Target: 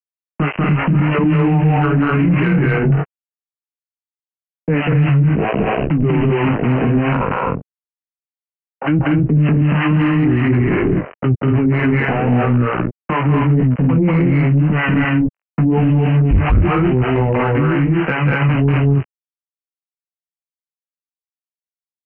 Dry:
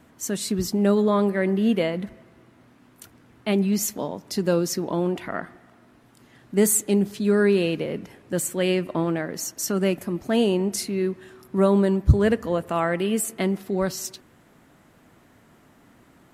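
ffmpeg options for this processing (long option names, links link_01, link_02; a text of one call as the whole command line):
ffmpeg -i in.wav -filter_complex "[0:a]aresample=8000,acrusher=bits=4:mix=0:aa=0.5,aresample=44100,asetrate=32667,aresample=44100,acrossover=split=480[link_01][link_02];[link_01]aeval=exprs='val(0)*(1-1/2+1/2*cos(2*PI*3*n/s))':channel_layout=same[link_03];[link_02]aeval=exprs='val(0)*(1-1/2-1/2*cos(2*PI*3*n/s))':channel_layout=same[link_04];[link_03][link_04]amix=inputs=2:normalize=0,flanger=delay=15.5:depth=6.3:speed=0.88,acrossover=split=200[link_05][link_06];[link_06]acompressor=threshold=-40dB:ratio=3[link_07];[link_05][link_07]amix=inputs=2:normalize=0,equalizer=frequency=1200:width=0.33:gain=2,aecho=1:1:189.5|239.1:0.794|0.891,asoftclip=type=tanh:threshold=-19dB,alimiter=level_in=30.5dB:limit=-1dB:release=50:level=0:latency=1,volume=-7dB" out.wav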